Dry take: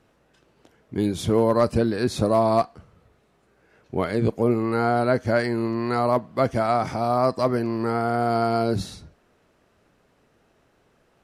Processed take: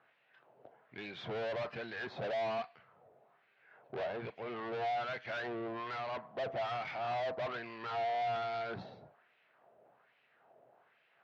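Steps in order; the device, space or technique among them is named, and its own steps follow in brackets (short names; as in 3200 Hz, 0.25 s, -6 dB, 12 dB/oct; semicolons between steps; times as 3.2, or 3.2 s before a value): wah-wah guitar rig (wah 1.2 Hz 570–2500 Hz, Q 2; tube stage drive 41 dB, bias 0.4; speaker cabinet 97–4100 Hz, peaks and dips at 130 Hz +9 dB, 300 Hz -4 dB, 700 Hz +5 dB, 1200 Hz -3 dB); gain +4 dB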